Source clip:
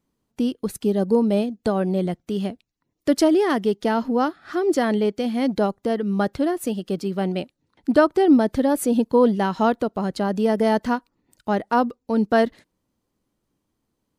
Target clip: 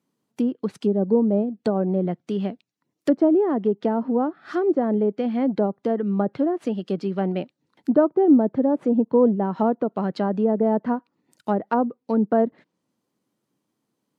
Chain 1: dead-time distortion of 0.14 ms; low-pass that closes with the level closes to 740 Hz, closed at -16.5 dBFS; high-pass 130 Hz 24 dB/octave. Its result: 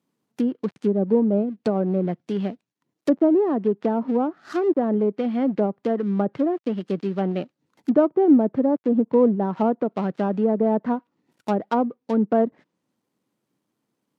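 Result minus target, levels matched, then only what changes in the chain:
dead-time distortion: distortion +13 dB
change: dead-time distortion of 0.028 ms

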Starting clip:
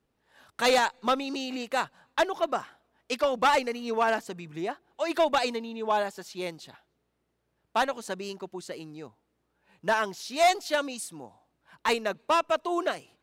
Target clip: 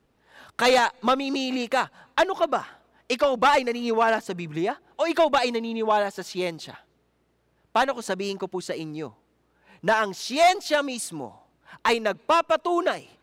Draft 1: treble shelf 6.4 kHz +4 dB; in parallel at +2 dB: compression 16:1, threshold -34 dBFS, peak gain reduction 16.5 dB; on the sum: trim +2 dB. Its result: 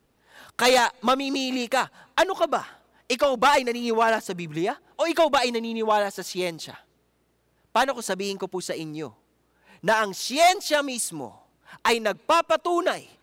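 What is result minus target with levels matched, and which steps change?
8 kHz band +4.5 dB
change: treble shelf 6.4 kHz -5.5 dB

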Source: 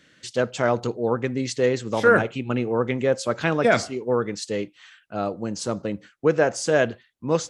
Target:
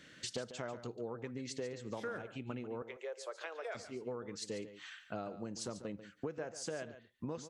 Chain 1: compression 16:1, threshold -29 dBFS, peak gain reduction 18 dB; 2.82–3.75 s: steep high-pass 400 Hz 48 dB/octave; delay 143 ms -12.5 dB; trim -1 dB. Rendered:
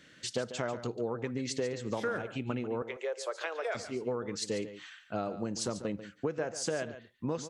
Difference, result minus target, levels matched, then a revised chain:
compression: peak gain reduction -8 dB
compression 16:1, threshold -37.5 dBFS, peak gain reduction 26 dB; 2.82–3.75 s: steep high-pass 400 Hz 48 dB/octave; delay 143 ms -12.5 dB; trim -1 dB

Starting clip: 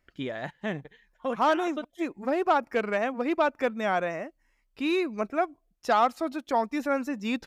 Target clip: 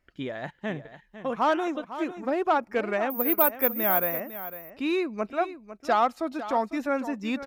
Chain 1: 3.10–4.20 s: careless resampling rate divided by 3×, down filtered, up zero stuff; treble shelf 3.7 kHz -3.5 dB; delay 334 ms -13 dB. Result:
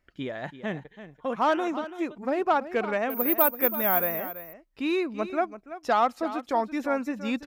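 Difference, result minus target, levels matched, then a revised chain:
echo 168 ms early
3.10–4.20 s: careless resampling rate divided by 3×, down filtered, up zero stuff; treble shelf 3.7 kHz -3.5 dB; delay 502 ms -13 dB

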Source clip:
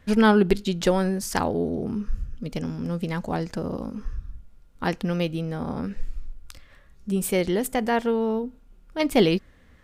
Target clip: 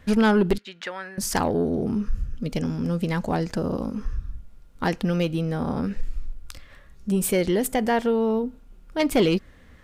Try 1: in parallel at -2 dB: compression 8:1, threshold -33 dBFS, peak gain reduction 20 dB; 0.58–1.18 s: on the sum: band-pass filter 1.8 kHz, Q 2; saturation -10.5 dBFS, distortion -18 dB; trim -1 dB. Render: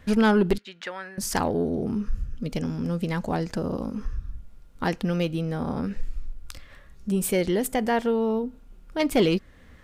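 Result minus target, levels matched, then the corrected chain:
compression: peak gain reduction +8.5 dB
in parallel at -2 dB: compression 8:1, threshold -23 dBFS, peak gain reduction 11.5 dB; 0.58–1.18 s: on the sum: band-pass filter 1.8 kHz, Q 2; saturation -10.5 dBFS, distortion -17 dB; trim -1 dB

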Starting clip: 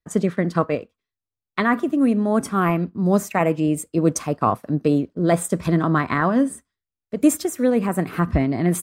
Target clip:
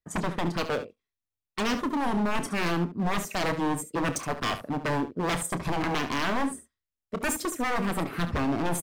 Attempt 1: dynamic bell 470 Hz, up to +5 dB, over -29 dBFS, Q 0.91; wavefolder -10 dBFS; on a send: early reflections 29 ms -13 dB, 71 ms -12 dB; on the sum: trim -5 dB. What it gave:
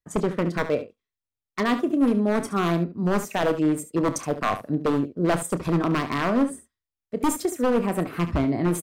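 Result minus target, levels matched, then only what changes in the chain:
wavefolder: distortion -13 dB
change: wavefolder -17 dBFS

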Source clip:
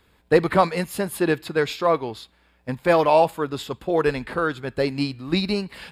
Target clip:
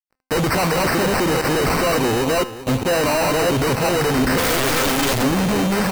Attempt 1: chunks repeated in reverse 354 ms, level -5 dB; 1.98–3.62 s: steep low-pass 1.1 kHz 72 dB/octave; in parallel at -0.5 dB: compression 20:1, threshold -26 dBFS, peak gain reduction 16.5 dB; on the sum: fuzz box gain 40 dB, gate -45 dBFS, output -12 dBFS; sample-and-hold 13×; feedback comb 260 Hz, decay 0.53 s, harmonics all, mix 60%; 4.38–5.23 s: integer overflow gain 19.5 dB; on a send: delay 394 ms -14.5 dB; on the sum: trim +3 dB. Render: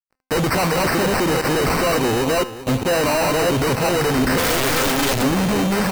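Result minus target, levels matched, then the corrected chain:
compression: peak gain reduction +7 dB
chunks repeated in reverse 354 ms, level -5 dB; 1.98–3.62 s: steep low-pass 1.1 kHz 72 dB/octave; in parallel at -0.5 dB: compression 20:1, threshold -18.5 dBFS, peak gain reduction 9.5 dB; on the sum: fuzz box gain 40 dB, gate -45 dBFS, output -12 dBFS; sample-and-hold 13×; feedback comb 260 Hz, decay 0.53 s, harmonics all, mix 60%; 4.38–5.23 s: integer overflow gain 19.5 dB; on a send: delay 394 ms -14.5 dB; on the sum: trim +3 dB

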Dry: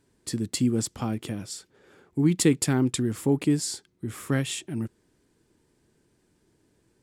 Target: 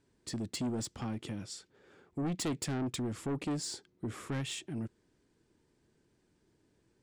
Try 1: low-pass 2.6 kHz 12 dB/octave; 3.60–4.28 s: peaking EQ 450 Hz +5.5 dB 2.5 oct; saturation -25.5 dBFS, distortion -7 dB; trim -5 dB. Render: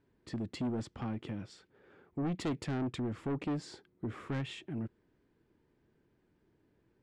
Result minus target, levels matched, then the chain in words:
8 kHz band -14.0 dB
low-pass 7.5 kHz 12 dB/octave; 3.60–4.28 s: peaking EQ 450 Hz +5.5 dB 2.5 oct; saturation -25.5 dBFS, distortion -7 dB; trim -5 dB

